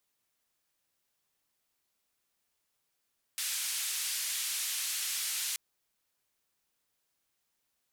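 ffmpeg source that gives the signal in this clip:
-f lavfi -i "anoisesrc=c=white:d=2.18:r=44100:seed=1,highpass=f=2200,lowpass=f=12000,volume=-26.1dB"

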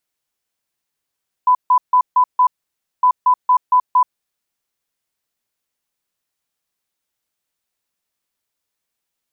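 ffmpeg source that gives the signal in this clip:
-f lavfi -i "aevalsrc='0.376*sin(2*PI*1000*t)*clip(min(mod(mod(t,1.56),0.23),0.08-mod(mod(t,1.56),0.23))/0.005,0,1)*lt(mod(t,1.56),1.15)':d=3.12:s=44100"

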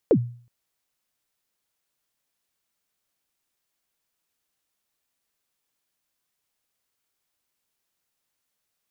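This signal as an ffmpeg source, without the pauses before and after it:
-f lavfi -i "aevalsrc='0.299*pow(10,-3*t/0.46)*sin(2*PI*(540*0.069/log(120/540)*(exp(log(120/540)*min(t,0.069)/0.069)-1)+120*max(t-0.069,0)))':d=0.37:s=44100"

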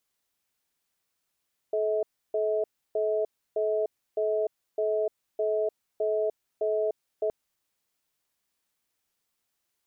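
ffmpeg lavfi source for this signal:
-f lavfi -i "aevalsrc='0.0473*(sin(2*PI*431*t)+sin(2*PI*641*t))*clip(min(mod(t,0.61),0.3-mod(t,0.61))/0.005,0,1)':d=5.57:s=44100"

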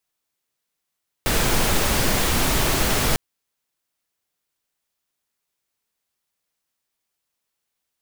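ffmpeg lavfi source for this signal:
-f lavfi -i "anoisesrc=c=pink:a=0.543:d=1.9:r=44100:seed=1"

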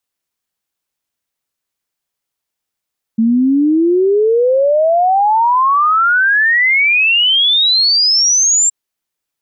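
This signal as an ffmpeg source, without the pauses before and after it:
-f lavfi -i "aevalsrc='0.376*clip(min(t,5.52-t)/0.01,0,1)*sin(2*PI*220*5.52/log(7500/220)*(exp(log(7500/220)*t/5.52)-1))':d=5.52:s=44100"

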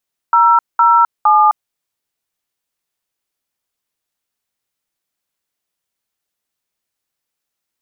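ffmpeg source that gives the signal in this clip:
-f lavfi -i "aevalsrc='0.335*clip(min(mod(t,0.461),0.259-mod(t,0.461))/0.002,0,1)*(eq(floor(t/0.461),0)*(sin(2*PI*941*mod(t,0.461))+sin(2*PI*1336*mod(t,0.461)))+eq(floor(t/0.461),1)*(sin(2*PI*941*mod(t,0.461))+sin(2*PI*1336*mod(t,0.461)))+eq(floor(t/0.461),2)*(sin(2*PI*852*mod(t,0.461))+sin(2*PI*1209*mod(t,0.461))))':d=1.383:s=44100"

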